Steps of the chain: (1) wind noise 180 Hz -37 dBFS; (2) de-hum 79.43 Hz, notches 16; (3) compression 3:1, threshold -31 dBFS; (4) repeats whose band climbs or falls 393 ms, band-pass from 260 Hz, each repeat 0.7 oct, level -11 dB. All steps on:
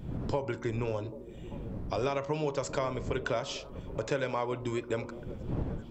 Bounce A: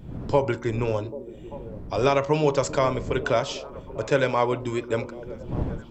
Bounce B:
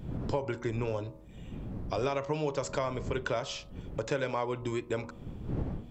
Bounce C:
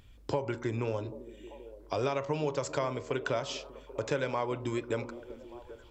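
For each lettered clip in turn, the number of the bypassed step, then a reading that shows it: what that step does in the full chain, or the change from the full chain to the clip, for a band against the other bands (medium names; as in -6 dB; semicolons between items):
3, mean gain reduction 5.0 dB; 4, echo-to-direct -18.0 dB to none; 1, 125 Hz band -2.5 dB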